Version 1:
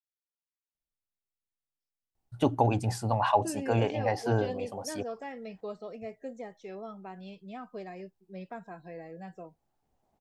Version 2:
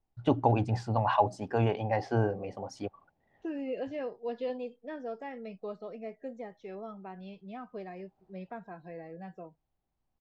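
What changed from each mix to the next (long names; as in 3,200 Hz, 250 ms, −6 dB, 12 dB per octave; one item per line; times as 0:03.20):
first voice: entry −2.15 s
master: add high-frequency loss of the air 160 metres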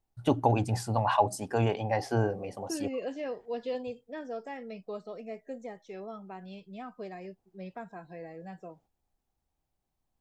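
second voice: entry −0.75 s
master: remove high-frequency loss of the air 160 metres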